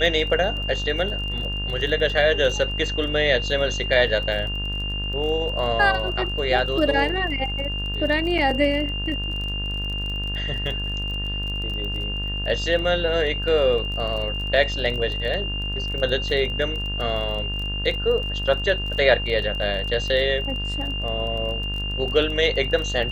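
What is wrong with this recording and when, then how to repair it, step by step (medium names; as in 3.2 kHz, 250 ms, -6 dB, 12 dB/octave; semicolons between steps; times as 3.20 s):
buzz 50 Hz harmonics 37 -29 dBFS
crackle 25 per s -30 dBFS
whine 2.8 kHz -28 dBFS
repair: de-click; de-hum 50 Hz, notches 37; band-stop 2.8 kHz, Q 30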